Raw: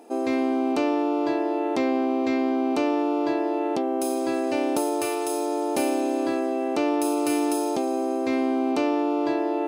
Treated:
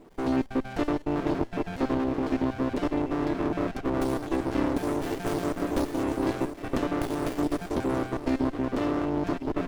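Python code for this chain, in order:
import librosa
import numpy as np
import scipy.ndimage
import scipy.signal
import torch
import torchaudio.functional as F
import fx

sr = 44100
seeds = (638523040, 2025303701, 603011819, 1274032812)

y = fx.spec_dropout(x, sr, seeds[0], share_pct=44)
y = fx.high_shelf(y, sr, hz=8800.0, db=11.5, at=(5.02, 7.39), fade=0.02)
y = fx.rider(y, sr, range_db=10, speed_s=0.5)
y = fx.echo_banded(y, sr, ms=1012, feedback_pct=42, hz=350.0, wet_db=-9)
y = fx.running_max(y, sr, window=33)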